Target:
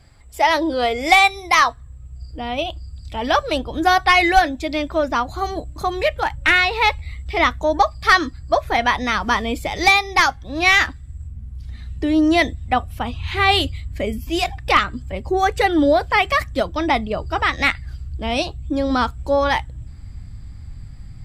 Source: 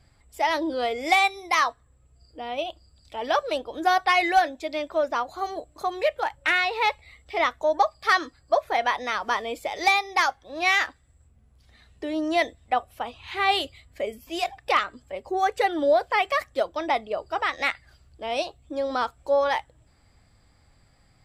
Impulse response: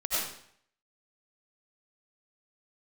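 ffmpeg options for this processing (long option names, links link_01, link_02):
-af "asubboost=boost=9.5:cutoff=170,volume=8dB"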